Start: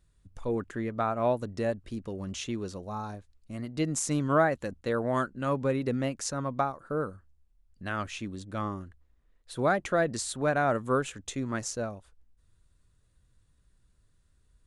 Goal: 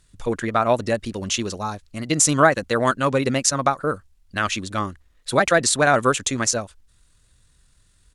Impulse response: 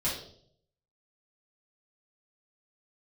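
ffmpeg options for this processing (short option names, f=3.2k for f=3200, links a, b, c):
-af "crystalizer=i=8.5:c=0,aemphasis=mode=reproduction:type=50fm,atempo=1.8,volume=6.5dB"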